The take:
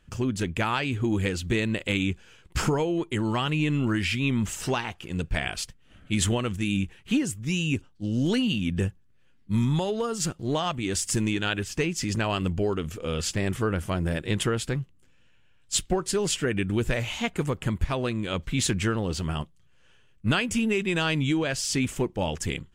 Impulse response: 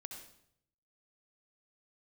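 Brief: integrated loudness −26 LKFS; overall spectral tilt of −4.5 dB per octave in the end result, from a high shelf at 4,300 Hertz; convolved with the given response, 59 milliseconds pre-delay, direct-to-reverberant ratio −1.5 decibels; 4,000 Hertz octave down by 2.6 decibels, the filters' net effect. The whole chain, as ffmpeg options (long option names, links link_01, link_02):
-filter_complex "[0:a]equalizer=frequency=4000:width_type=o:gain=-8,highshelf=frequency=4300:gain=7.5,asplit=2[link_01][link_02];[1:a]atrim=start_sample=2205,adelay=59[link_03];[link_02][link_03]afir=irnorm=-1:irlink=0,volume=5.5dB[link_04];[link_01][link_04]amix=inputs=2:normalize=0,volume=-2.5dB"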